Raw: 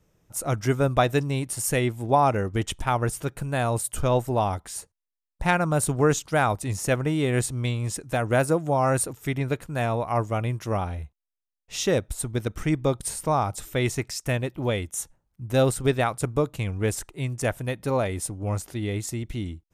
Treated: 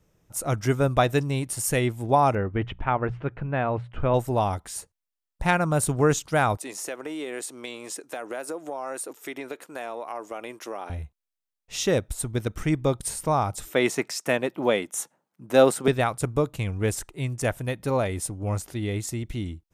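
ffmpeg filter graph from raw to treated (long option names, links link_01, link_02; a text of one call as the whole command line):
ffmpeg -i in.wav -filter_complex "[0:a]asettb=1/sr,asplit=3[link_01][link_02][link_03];[link_01]atrim=end=2.354[link_04];[link_02]atrim=start=2.35:end=4.14,asetpts=PTS-STARTPTS,afade=type=in:duration=0.004:curve=qsin,afade=type=out:start_time=1.786:duration=0.004:curve=qsin,lowpass=frequency=2600:width=0.5412,lowpass=frequency=2600:width=1.3066,bandreject=frequency=60:width_type=h:width=6,bandreject=frequency=120:width_type=h:width=6,bandreject=frequency=180:width_type=h:width=6[link_05];[link_03]atrim=start=4.136[link_06];[link_04][link_05]acrossfade=duration=0.004:curve1=hsin:curve2=qsin[link_07];[link_07][link_06]acrossfade=duration=0.004:curve1=qsin:curve2=hsin,asettb=1/sr,asplit=3[link_08][link_09][link_10];[link_08]atrim=end=6.574[link_11];[link_09]atrim=start=6.57:end=10.9,asetpts=PTS-STARTPTS,afade=type=in:duration=0.004:curve=qsin,afade=type=out:start_time=4.326:duration=0.004:curve=qsin,highpass=frequency=300:width=0.5412,highpass=frequency=300:width=1.3066,acompressor=threshold=-30dB:ratio=4:attack=3.2:release=140:knee=1:detection=peak[link_12];[link_10]atrim=start=10.896[link_13];[link_11][link_12]acrossfade=duration=0.004:curve1=hsin:curve2=qsin[link_14];[link_14][link_13]acrossfade=duration=0.004:curve1=qsin:curve2=hsin,asettb=1/sr,asplit=3[link_15][link_16][link_17];[link_15]atrim=end=13.704[link_18];[link_16]atrim=start=13.7:end=15.88,asetpts=PTS-STARTPTS,afade=type=in:duration=0.004:curve=qsin,afade=type=out:start_time=2.176:duration=0.004:curve=qsin,highpass=frequency=180:width=0.5412,highpass=frequency=180:width=1.3066,equalizer=frequency=900:width=0.38:gain=6[link_19];[link_17]atrim=start=15.876[link_20];[link_18][link_19]acrossfade=duration=0.004:curve1=hsin:curve2=qsin[link_21];[link_21][link_20]acrossfade=duration=0.004:curve1=qsin:curve2=hsin" out.wav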